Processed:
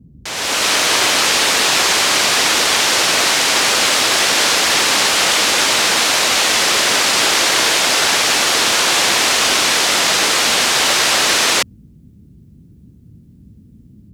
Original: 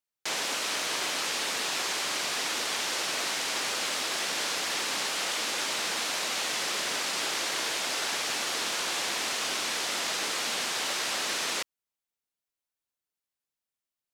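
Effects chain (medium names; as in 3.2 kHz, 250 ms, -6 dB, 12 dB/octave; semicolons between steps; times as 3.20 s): level rider gain up to 14 dB; band noise 48–240 Hz -46 dBFS; trim +3 dB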